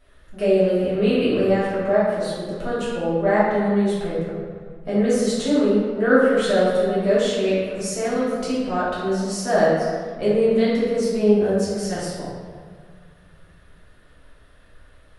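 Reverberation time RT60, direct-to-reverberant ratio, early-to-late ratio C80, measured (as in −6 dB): 1.9 s, −10.5 dB, 0.5 dB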